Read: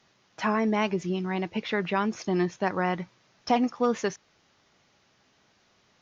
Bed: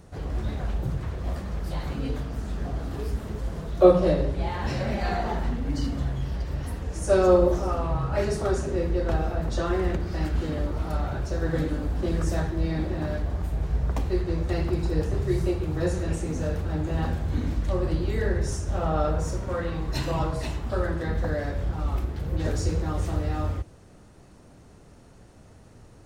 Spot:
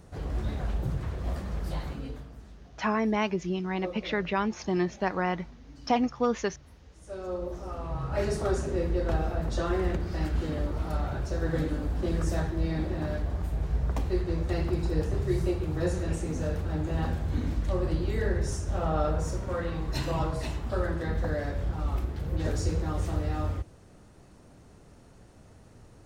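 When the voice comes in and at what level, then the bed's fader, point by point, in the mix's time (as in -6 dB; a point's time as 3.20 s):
2.40 s, -1.5 dB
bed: 1.74 s -2 dB
2.70 s -21.5 dB
6.99 s -21.5 dB
8.25 s -2.5 dB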